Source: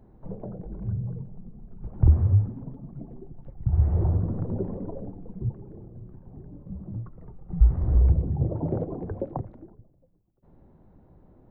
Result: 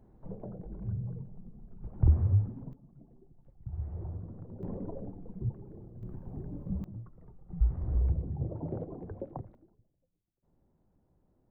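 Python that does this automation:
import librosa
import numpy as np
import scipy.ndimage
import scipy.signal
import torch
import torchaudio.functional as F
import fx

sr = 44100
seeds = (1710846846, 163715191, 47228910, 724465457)

y = fx.gain(x, sr, db=fx.steps((0.0, -5.5), (2.73, -16.0), (4.63, -4.5), (6.03, 3.0), (6.84, -9.0), (9.55, -16.0)))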